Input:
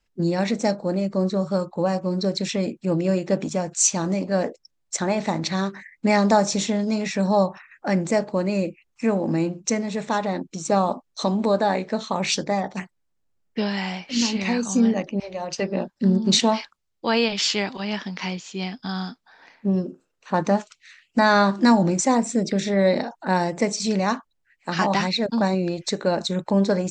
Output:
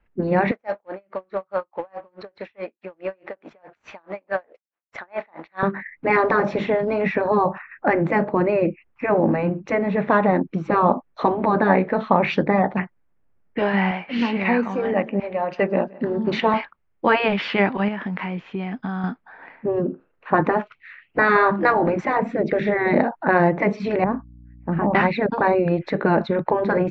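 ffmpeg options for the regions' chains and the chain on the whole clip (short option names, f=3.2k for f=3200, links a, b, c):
-filter_complex "[0:a]asettb=1/sr,asplit=3[a][b][c];[a]atrim=end=0.514[d];[b]atrim=start=0.51:end=5.63,asetpts=PTS-STARTPTS,afade=t=in:d=0.004:c=qsin,afade=t=out:st=5.116:d=0.004:c=qsin,highpass=740,acrusher=bits=3:mode=log:mix=0:aa=0.000001,aeval=exprs='val(0)*pow(10,-39*(0.5-0.5*cos(2*PI*4.7*n/s))/20)':c=same[e];[c]atrim=start=5.626[f];[d][e]acrossfade=d=0.004:c1=hsin:c2=qsin[g];[g][f]acrossfade=d=0.004:c1=qsin:c2=hsin,asettb=1/sr,asplit=3[h][i][j];[h]atrim=end=13.914[k];[i]atrim=start=13.91:end=16.54,asetpts=PTS-STARTPTS,afade=t=in:d=0.004:c=qsin,afade=t=out:st=2.626:d=0.004:c=qsin,lowshelf=f=310:g=-9.5,aecho=1:1:172|344|516:0.0708|0.0283|0.0113,atrim=end_sample=115983[l];[j]atrim=start=16.536[m];[k][l]acrossfade=d=0.004:c1=hsin:c2=qsin[n];[n][m]acrossfade=d=0.004:c1=qsin:c2=hsin,asettb=1/sr,asplit=3[o][p][q];[o]atrim=end=17.884[r];[p]atrim=start=17.88:end=19.04,asetpts=PTS-STARTPTS,afade=t=in:d=0.004:c=qsin,afade=t=out:st=1.156:d=0.004:c=qsin,bandreject=f=4.6k:w=24,acompressor=threshold=-31dB:ratio=5:attack=3.2:release=140:knee=1:detection=peak[s];[q]atrim=start=19.036[t];[r][s]acrossfade=d=0.004:c1=hsin:c2=qsin[u];[u][t]acrossfade=d=0.004:c1=qsin:c2=hsin,asettb=1/sr,asplit=3[v][w][x];[v]atrim=end=24.044[y];[w]atrim=start=24.04:end=24.95,asetpts=PTS-STARTPTS,afade=t=in:d=0.004:c=qsin,afade=t=out:st=0.906:d=0.004:c=qsin,bandpass=f=190:t=q:w=0.81,aeval=exprs='val(0)+0.00251*(sin(2*PI*60*n/s)+sin(2*PI*2*60*n/s)/2+sin(2*PI*3*60*n/s)/3+sin(2*PI*4*60*n/s)/4+sin(2*PI*5*60*n/s)/5)':c=same[z];[x]atrim=start=24.946[aa];[y][z]acrossfade=d=0.004:c1=hsin:c2=qsin[ab];[ab][aa]acrossfade=d=0.004:c1=qsin:c2=hsin,afftfilt=real='re*lt(hypot(re,im),0.562)':imag='im*lt(hypot(re,im),0.562)':win_size=1024:overlap=0.75,lowpass=f=2.2k:w=0.5412,lowpass=f=2.2k:w=1.3066,volume=8.5dB"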